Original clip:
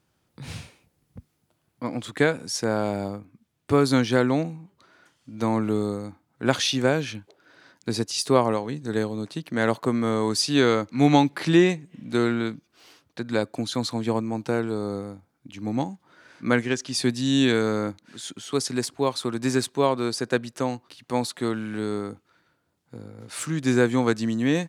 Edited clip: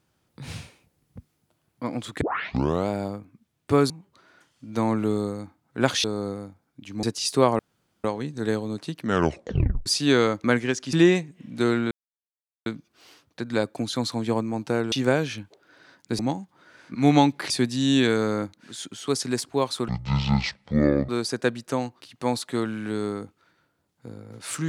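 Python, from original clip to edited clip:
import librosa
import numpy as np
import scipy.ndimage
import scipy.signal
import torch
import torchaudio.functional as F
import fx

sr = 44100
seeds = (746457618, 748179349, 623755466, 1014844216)

y = fx.edit(x, sr, fx.tape_start(start_s=2.21, length_s=0.67),
    fx.cut(start_s=3.9, length_s=0.65),
    fx.swap(start_s=6.69, length_s=1.27, other_s=14.71, other_length_s=0.99),
    fx.insert_room_tone(at_s=8.52, length_s=0.45),
    fx.tape_stop(start_s=9.5, length_s=0.84),
    fx.swap(start_s=10.92, length_s=0.55, other_s=16.46, other_length_s=0.49),
    fx.insert_silence(at_s=12.45, length_s=0.75),
    fx.speed_span(start_s=19.33, length_s=0.64, speed=0.53), tone=tone)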